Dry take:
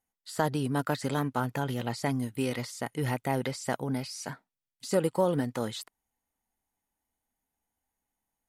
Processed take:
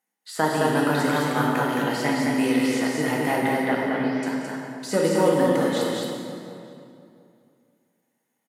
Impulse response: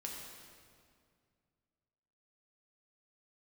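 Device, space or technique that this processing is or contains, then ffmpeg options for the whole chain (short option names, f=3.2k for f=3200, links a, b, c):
stadium PA: -filter_complex "[0:a]asettb=1/sr,asplit=3[a][b][c];[a]atrim=end=3.454[d];[b]atrim=start=3.45:end=4.23,asetpts=PTS-STARTPTS,afade=t=in:d=0.004:c=qsin,afade=t=out:st=0.776:d=0.004:c=qsin,lowpass=f=3.2k:w=0.5412,lowpass=f=3.2k:w=1.3066[e];[c]atrim=start=4.226[f];[d][e]acrossfade=d=0.004:c1=hsin:c2=qsin[g];[g][f]acrossfade=d=0.004:c1=qsin:c2=hsin,highpass=f=170:w=0.5412,highpass=f=170:w=1.3066,equalizer=f=1.9k:t=o:w=0.79:g=4.5,aecho=1:1:180.8|215.7:0.282|0.708,asplit=2[h][i];[i]adelay=698,lowpass=f=1.5k:p=1,volume=-16.5dB,asplit=2[j][k];[k]adelay=698,lowpass=f=1.5k:p=1,volume=0.17[l];[h][j][l]amix=inputs=3:normalize=0[m];[1:a]atrim=start_sample=2205[n];[m][n]afir=irnorm=-1:irlink=0,volume=7.5dB"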